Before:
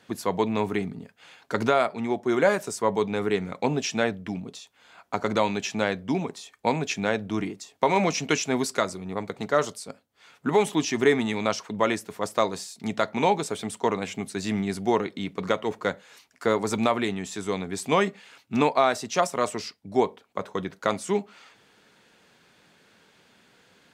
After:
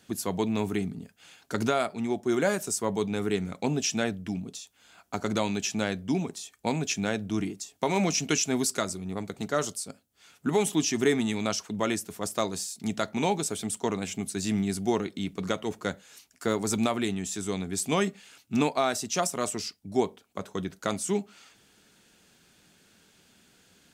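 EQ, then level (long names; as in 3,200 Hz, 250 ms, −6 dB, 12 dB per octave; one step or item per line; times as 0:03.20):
octave-band graphic EQ 125/250/500/1,000/2,000/4,000 Hz −7/−4/−10/−11/−9/−6 dB
+7.0 dB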